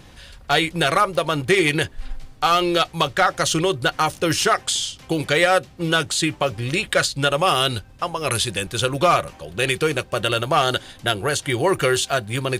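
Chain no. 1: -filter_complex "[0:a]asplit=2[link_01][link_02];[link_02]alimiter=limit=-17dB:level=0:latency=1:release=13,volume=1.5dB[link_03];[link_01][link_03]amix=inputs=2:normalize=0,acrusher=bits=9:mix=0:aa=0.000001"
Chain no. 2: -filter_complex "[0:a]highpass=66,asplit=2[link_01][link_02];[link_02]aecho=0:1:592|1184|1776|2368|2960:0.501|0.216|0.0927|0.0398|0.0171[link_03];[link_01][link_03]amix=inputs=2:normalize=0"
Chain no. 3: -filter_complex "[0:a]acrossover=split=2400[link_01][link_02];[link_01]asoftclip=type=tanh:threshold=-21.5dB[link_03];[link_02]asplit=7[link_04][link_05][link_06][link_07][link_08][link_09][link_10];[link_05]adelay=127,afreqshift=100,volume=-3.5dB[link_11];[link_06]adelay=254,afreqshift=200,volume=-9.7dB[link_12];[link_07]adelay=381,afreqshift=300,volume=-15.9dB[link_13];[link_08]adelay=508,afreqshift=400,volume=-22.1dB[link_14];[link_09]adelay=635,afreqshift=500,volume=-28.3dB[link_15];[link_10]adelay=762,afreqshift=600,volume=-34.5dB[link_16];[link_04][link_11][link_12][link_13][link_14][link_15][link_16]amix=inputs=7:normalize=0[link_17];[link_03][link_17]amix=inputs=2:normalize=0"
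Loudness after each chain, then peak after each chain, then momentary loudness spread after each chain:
−16.5, −19.5, −22.5 LKFS; −4.5, −4.5, −6.5 dBFS; 6, 4, 5 LU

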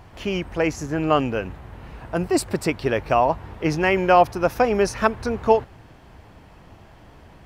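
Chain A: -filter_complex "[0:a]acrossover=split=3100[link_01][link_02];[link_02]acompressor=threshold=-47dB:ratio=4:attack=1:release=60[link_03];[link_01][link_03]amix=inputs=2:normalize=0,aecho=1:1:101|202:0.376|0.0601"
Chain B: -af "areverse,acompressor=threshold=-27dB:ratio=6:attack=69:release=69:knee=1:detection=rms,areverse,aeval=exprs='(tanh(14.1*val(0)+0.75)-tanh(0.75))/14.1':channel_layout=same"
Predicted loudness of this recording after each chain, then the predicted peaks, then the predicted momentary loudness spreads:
−21.5, −33.0 LKFS; −2.0, −19.0 dBFS; 12, 20 LU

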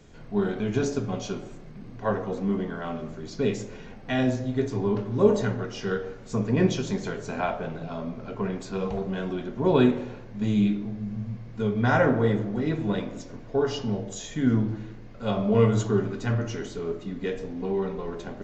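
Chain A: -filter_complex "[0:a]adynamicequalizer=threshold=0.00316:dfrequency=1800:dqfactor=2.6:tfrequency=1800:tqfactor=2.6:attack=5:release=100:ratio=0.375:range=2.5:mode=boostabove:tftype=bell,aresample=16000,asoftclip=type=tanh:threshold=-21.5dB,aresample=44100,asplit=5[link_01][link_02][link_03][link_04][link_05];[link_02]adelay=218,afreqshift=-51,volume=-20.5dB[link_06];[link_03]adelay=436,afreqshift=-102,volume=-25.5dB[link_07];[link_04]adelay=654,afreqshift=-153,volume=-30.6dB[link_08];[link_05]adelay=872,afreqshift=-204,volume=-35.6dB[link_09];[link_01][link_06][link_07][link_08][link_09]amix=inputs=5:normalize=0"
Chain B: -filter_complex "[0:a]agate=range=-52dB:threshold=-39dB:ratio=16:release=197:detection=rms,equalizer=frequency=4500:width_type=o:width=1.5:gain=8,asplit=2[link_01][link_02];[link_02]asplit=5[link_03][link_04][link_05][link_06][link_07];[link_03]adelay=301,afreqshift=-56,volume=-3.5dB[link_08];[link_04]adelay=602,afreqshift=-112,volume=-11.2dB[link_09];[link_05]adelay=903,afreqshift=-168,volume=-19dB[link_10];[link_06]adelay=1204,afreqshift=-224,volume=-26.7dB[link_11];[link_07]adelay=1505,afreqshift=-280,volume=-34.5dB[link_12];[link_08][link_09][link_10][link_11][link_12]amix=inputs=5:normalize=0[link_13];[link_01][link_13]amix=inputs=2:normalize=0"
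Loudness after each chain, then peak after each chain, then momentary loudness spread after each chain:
−30.5, −25.5 LKFS; −20.0, −6.0 dBFS; 9, 10 LU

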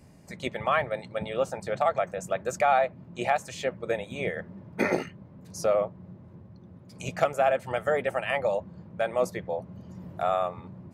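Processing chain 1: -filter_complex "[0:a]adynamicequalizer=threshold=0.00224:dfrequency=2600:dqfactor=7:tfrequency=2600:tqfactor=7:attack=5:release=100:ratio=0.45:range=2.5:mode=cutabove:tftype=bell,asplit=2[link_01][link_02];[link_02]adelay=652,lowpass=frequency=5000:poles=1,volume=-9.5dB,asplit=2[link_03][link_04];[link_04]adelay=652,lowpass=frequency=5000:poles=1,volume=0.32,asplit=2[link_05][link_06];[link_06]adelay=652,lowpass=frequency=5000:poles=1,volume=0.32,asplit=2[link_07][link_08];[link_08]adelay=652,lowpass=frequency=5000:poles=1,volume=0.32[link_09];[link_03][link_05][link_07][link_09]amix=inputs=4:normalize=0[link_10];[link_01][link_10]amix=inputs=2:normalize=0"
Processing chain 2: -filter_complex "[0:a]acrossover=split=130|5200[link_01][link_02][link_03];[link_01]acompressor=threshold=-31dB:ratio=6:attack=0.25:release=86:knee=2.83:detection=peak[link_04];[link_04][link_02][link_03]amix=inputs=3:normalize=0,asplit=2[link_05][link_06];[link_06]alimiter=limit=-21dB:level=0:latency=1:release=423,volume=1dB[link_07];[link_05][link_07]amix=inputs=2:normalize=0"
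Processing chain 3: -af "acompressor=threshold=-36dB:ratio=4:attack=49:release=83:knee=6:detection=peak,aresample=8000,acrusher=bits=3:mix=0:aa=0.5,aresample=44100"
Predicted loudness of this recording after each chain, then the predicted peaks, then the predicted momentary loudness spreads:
−29.0, −25.0, −40.5 LKFS; −9.5, −8.0, −15.0 dBFS; 12, 16, 12 LU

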